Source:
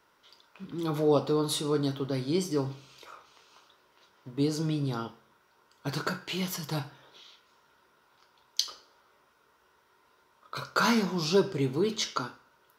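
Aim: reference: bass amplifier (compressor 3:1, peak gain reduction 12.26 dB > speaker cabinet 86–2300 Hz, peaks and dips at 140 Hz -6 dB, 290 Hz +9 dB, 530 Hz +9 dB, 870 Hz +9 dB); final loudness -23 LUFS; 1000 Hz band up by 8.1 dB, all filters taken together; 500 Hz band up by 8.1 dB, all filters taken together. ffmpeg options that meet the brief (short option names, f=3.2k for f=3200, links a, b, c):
-af "equalizer=f=500:t=o:g=3.5,equalizer=f=1k:t=o:g=3.5,acompressor=threshold=-32dB:ratio=3,highpass=f=86:w=0.5412,highpass=f=86:w=1.3066,equalizer=f=140:t=q:w=4:g=-6,equalizer=f=290:t=q:w=4:g=9,equalizer=f=530:t=q:w=4:g=9,equalizer=f=870:t=q:w=4:g=9,lowpass=f=2.3k:w=0.5412,lowpass=f=2.3k:w=1.3066,volume=8dB"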